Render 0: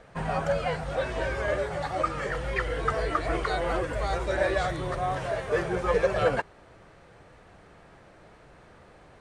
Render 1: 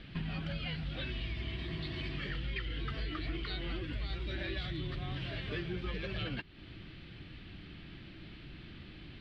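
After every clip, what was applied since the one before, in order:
healed spectral selection 0:01.19–0:02.15, 250–2,100 Hz before
drawn EQ curve 330 Hz 0 dB, 470 Hz −19 dB, 930 Hz −19 dB, 1,800 Hz −7 dB, 3,100 Hz +6 dB, 4,700 Hz −1 dB, 6,600 Hz −25 dB
downward compressor 4 to 1, threshold −44 dBFS, peak gain reduction 14.5 dB
level +7 dB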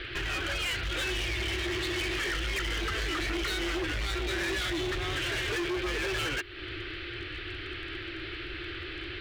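drawn EQ curve 110 Hz 0 dB, 200 Hz −30 dB, 350 Hz +11 dB, 650 Hz 0 dB, 980 Hz +1 dB, 1,400 Hz +12 dB, 4,800 Hz +5 dB
in parallel at +3 dB: brickwall limiter −25.5 dBFS, peak gain reduction 7.5 dB
on the sum: gain into a clipping stage and back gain 29 dB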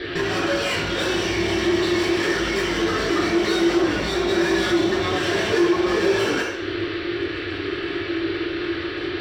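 convolution reverb RT60 0.75 s, pre-delay 3 ms, DRR −6.5 dB
in parallel at −0.5 dB: brickwall limiter −13 dBFS, peak gain reduction 10 dB
on the sum: level −8.5 dB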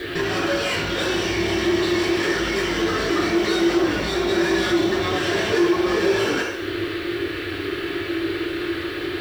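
bit-depth reduction 8 bits, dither none

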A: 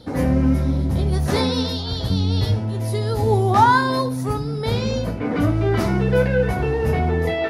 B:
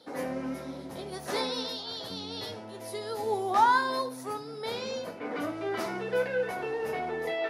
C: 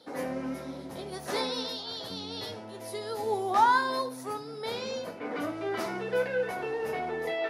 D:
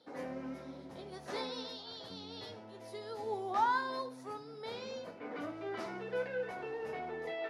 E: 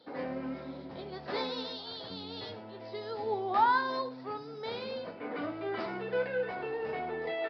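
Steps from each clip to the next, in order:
high-pass filter 410 Hz 12 dB per octave; level −7.5 dB
no processing that can be heard
high-frequency loss of the air 58 metres; level −8 dB
downsampling to 11,025 Hz; level +5 dB

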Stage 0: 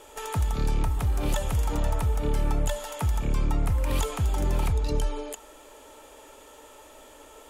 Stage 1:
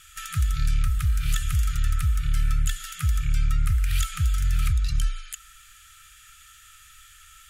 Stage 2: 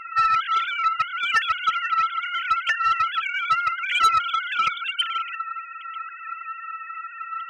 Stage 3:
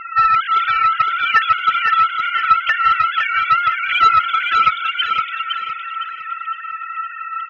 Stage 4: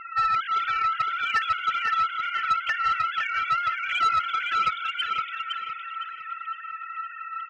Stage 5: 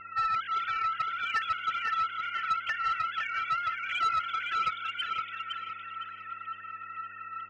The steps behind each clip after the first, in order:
brick-wall band-stop 170–1,200 Hz; parametric band 320 Hz −4 dB 2.9 octaves; level +3.5 dB
three sine waves on the formant tracks; soft clipping −14 dBFS, distortion −10 dB; level +1 dB
high-frequency loss of the air 230 metres; on a send: repeating echo 511 ms, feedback 34%, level −5 dB; on the sum: level +7.5 dB
soft clipping −7 dBFS, distortion −20 dB; level −8.5 dB
hum with harmonics 100 Hz, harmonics 11, −60 dBFS −4 dB per octave; level −5.5 dB

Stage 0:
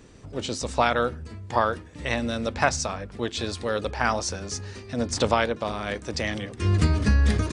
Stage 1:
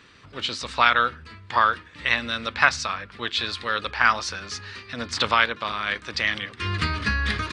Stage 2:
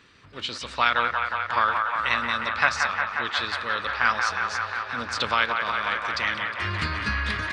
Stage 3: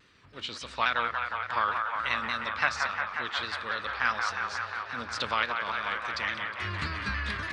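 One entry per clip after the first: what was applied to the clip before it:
high-pass filter 53 Hz; flat-topped bell 2,200 Hz +15 dB 2.5 octaves; level −7 dB
delay with a band-pass on its return 179 ms, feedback 83%, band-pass 1,200 Hz, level −4 dB; level −3.5 dB
pitch modulation by a square or saw wave saw down 3.5 Hz, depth 100 cents; level −5.5 dB

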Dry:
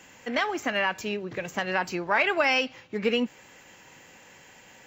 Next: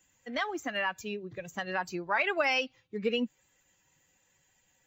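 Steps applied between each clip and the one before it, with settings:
spectral dynamics exaggerated over time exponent 1.5
level −3 dB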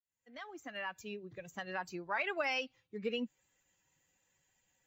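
fade in at the beginning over 1.13 s
level −7 dB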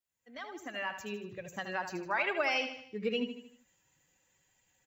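repeating echo 77 ms, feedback 48%, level −9 dB
level +3.5 dB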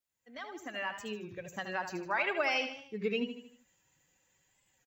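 wow of a warped record 33 1/3 rpm, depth 100 cents

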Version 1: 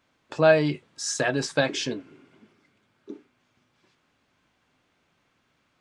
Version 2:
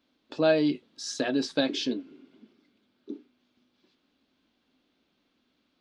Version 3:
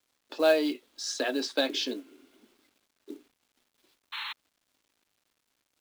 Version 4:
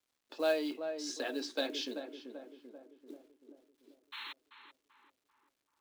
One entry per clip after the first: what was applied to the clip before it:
octave-band graphic EQ 125/250/1,000/2,000/4,000/8,000 Hz −12/+11/−4/−5/+9/−10 dB; level −4.5 dB
sound drawn into the spectrogram noise, 0:04.12–0:04.33, 820–4,300 Hz −38 dBFS; Bessel high-pass filter 410 Hz, order 6; log-companded quantiser 6 bits; level +1.5 dB
tape delay 388 ms, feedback 61%, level −6 dB, low-pass 1,200 Hz; level −8 dB

